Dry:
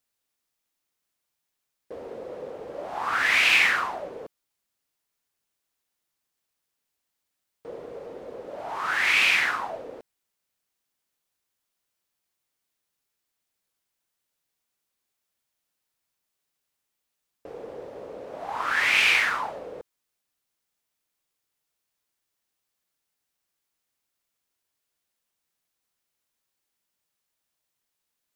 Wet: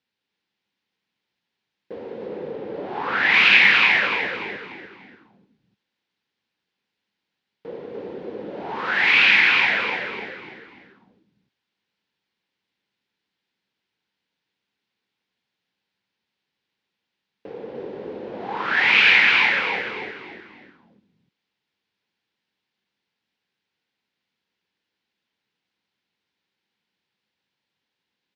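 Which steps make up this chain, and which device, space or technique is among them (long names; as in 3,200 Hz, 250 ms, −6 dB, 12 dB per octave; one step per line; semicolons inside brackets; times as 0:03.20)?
0:02.26–0:03.34: high-shelf EQ 8,100 Hz −10 dB
frequency-shifting delay pedal into a guitar cabinet (echo with shifted repeats 295 ms, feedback 39%, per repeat −67 Hz, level −3 dB; loudspeaker in its box 110–4,200 Hz, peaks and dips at 200 Hz +6 dB, 640 Hz −9 dB, 1,200 Hz −8 dB)
level +5.5 dB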